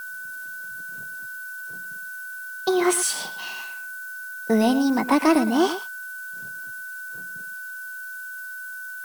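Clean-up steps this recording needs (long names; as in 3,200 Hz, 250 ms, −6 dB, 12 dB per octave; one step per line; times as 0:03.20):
notch filter 1,500 Hz, Q 30
noise reduction from a noise print 30 dB
echo removal 113 ms −12 dB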